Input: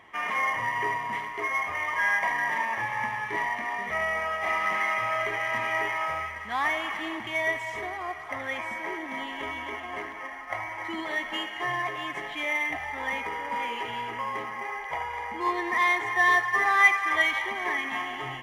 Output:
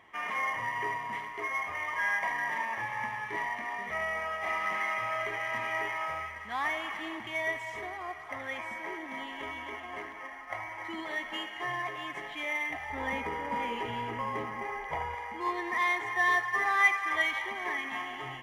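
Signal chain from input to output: 12.9–15.15 low shelf 490 Hz +11.5 dB; gain -5 dB

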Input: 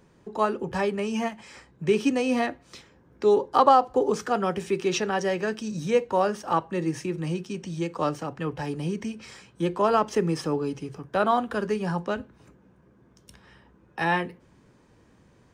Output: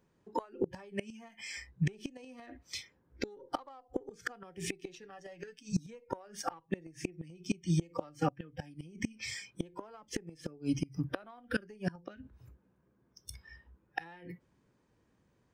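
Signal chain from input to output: spectral noise reduction 21 dB; added harmonics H 6 -43 dB, 7 -37 dB, 8 -30 dB, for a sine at -4 dBFS; compressor 12:1, threshold -31 dBFS, peak gain reduction 19 dB; 5.03–5.79 comb 6.8 ms, depth 72%; flipped gate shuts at -27 dBFS, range -25 dB; gain +8 dB

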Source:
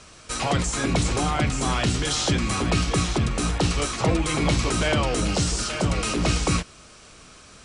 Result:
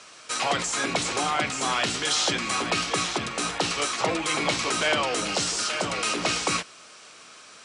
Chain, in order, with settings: weighting filter A; gain +1 dB

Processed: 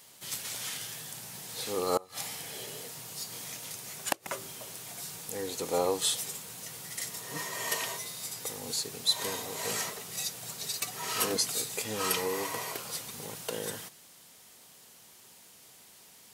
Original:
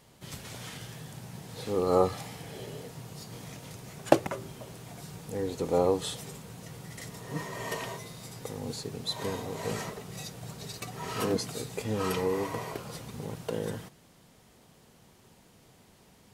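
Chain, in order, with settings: flipped gate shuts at -12 dBFS, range -25 dB; tilt +3.5 dB/oct

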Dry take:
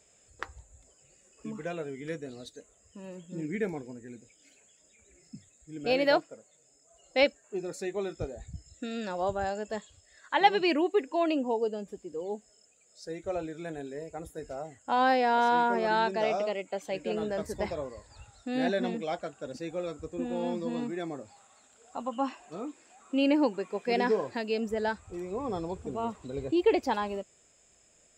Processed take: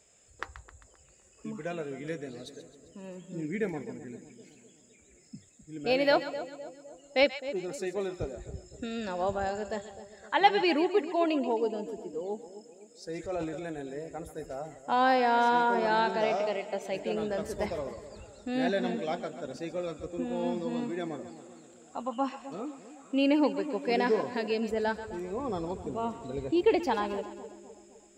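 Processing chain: split-band echo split 730 Hz, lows 0.257 s, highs 0.132 s, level -12.5 dB; 13.09–13.65 transient shaper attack -4 dB, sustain +7 dB

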